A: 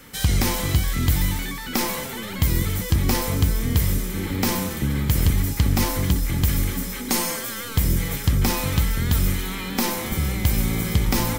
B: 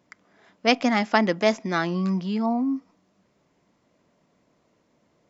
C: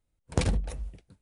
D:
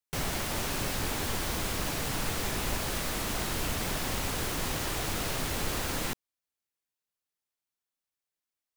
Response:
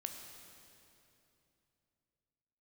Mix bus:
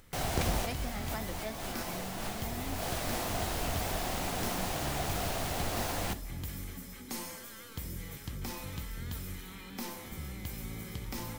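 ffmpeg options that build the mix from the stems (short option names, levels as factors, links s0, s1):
-filter_complex "[0:a]acrossover=split=260|3000[s0][s1][s2];[s0]acompressor=threshold=0.1:ratio=6[s3];[s3][s1][s2]amix=inputs=3:normalize=0,volume=0.158,asplit=2[s4][s5];[s5]volume=0.631[s6];[1:a]volume=0.15,asplit=2[s7][s8];[2:a]acompressor=mode=upward:threshold=0.0158:ratio=2.5,volume=0.841[s9];[3:a]equalizer=f=710:w=3:g=10,volume=0.891,asplit=2[s10][s11];[s11]volume=0.237[s12];[s8]apad=whole_len=386334[s13];[s10][s13]sidechaincompress=threshold=0.00562:ratio=8:attack=9.2:release=190[s14];[4:a]atrim=start_sample=2205[s15];[s6][s12]amix=inputs=2:normalize=0[s16];[s16][s15]afir=irnorm=-1:irlink=0[s17];[s4][s7][s9][s14][s17]amix=inputs=5:normalize=0,flanger=delay=9.6:depth=7:regen=-75:speed=1.5:shape=triangular"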